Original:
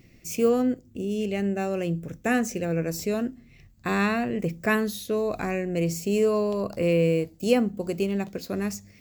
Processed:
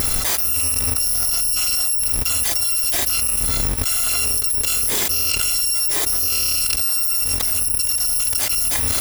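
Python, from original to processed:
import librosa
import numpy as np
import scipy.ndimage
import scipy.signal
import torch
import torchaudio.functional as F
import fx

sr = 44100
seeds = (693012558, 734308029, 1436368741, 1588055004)

y = fx.bit_reversed(x, sr, seeds[0], block=256)
y = fx.peak_eq(y, sr, hz=410.0, db=7.0, octaves=0.29, at=(3.94, 6.43))
y = fx.env_flatten(y, sr, amount_pct=100)
y = y * librosa.db_to_amplitude(-3.0)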